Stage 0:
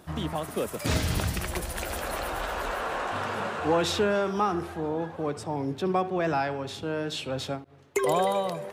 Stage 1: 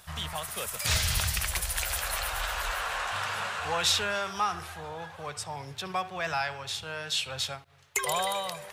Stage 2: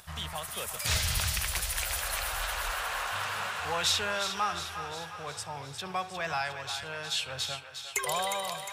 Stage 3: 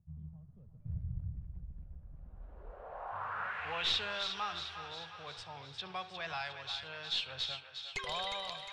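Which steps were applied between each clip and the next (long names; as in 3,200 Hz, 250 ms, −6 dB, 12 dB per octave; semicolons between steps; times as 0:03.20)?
guitar amp tone stack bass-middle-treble 10-0-10; level +7.5 dB
upward compression, threshold −50 dBFS; on a send: feedback echo with a high-pass in the loop 357 ms, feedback 59%, high-pass 700 Hz, level −8 dB; on the sum: level −2 dB
stylus tracing distortion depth 0.054 ms; low-pass filter sweep 150 Hz → 3,900 Hz, 0:02.13–0:03.96; level −9 dB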